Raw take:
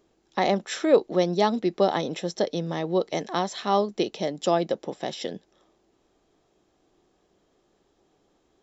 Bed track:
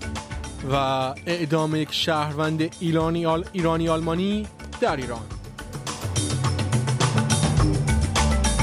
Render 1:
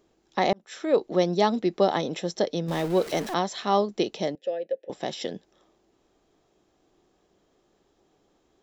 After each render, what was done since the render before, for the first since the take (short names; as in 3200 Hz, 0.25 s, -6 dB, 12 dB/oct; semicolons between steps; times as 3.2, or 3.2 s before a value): 0.53–1.15 fade in; 2.68–3.34 zero-crossing step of -33 dBFS; 4.35–4.9 vowel filter e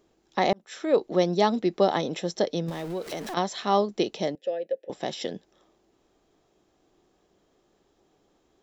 2.69–3.37 compressor 3:1, threshold -31 dBFS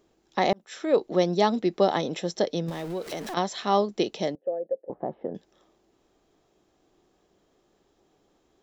4.35–5.35 LPF 1100 Hz 24 dB/oct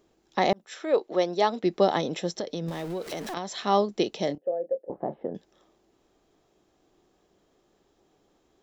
0.74–1.64 tone controls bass -15 dB, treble -4 dB; 2.28–3.56 compressor, threshold -27 dBFS; 4.26–5.16 doubler 28 ms -10 dB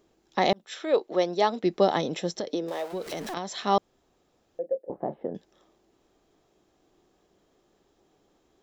0.46–0.98 bell 3500 Hz +6 dB 0.69 oct; 2.49–2.92 resonant high-pass 260 Hz -> 740 Hz, resonance Q 2.2; 3.78–4.59 room tone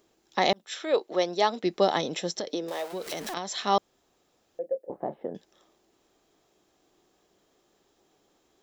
tilt +1.5 dB/oct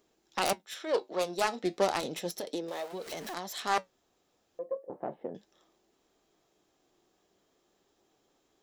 self-modulated delay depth 0.27 ms; flange 0.33 Hz, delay 4.1 ms, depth 7.3 ms, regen -69%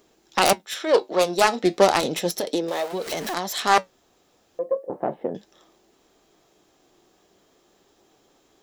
gain +11 dB